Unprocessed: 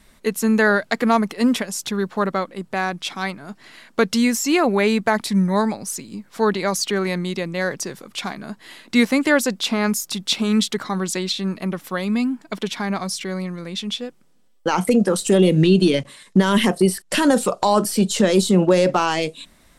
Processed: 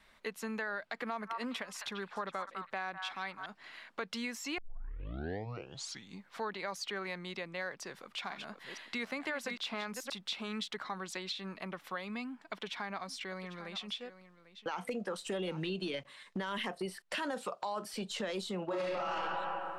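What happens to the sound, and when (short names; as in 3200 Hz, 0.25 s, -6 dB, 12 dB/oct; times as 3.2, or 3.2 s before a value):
0.95–3.46 delay with a stepping band-pass 0.204 s, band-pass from 1200 Hz, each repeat 1.4 oct, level -6 dB
4.58 tape start 1.70 s
7.82–10.1 reverse delay 0.478 s, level -7.5 dB
12.28–15.7 echo 0.797 s -17.5 dB
17.14–17.94 HPF 53 Hz
18.66–19.13 reverb throw, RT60 1.6 s, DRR -11.5 dB
whole clip: three-band isolator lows -12 dB, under 570 Hz, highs -14 dB, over 4200 Hz; limiter -14 dBFS; compressor 2:1, threshold -36 dBFS; gain -5 dB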